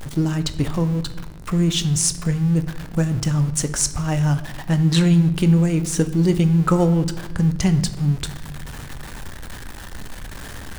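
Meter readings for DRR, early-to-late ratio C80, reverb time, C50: 10.0 dB, 15.5 dB, 1.0 s, 13.5 dB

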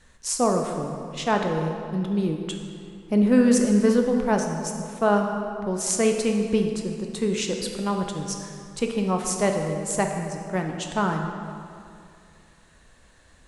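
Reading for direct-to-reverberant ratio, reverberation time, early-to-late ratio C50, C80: 2.5 dB, 2.4 s, 4.0 dB, 5.5 dB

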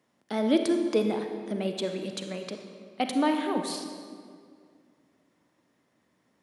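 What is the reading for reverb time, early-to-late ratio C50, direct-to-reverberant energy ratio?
2.1 s, 6.0 dB, 5.0 dB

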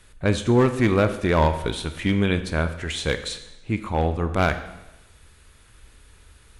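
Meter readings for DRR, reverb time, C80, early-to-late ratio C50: 9.0 dB, 1.0 s, 13.5 dB, 11.5 dB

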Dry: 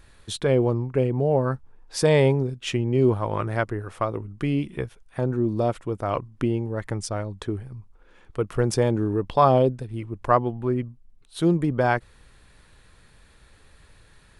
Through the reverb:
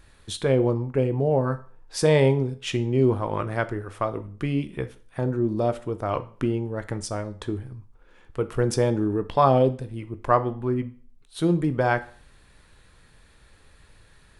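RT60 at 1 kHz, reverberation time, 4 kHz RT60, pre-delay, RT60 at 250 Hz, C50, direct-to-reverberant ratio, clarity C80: 0.45 s, 0.45 s, 0.45 s, 13 ms, 0.45 s, 16.0 dB, 10.5 dB, 21.0 dB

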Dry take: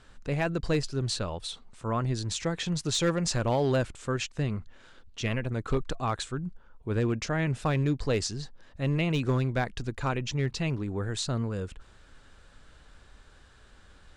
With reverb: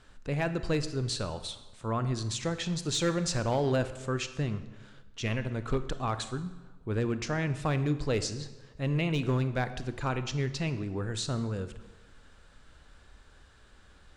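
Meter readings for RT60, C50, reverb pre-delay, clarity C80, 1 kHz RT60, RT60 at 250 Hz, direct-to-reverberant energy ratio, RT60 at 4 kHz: 1.2 s, 12.5 dB, 25 ms, 14.5 dB, 1.2 s, 1.2 s, 11.0 dB, 0.95 s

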